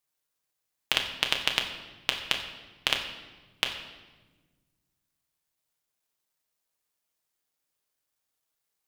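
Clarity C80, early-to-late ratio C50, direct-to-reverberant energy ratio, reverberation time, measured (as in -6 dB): 9.0 dB, 7.5 dB, 2.0 dB, 1.3 s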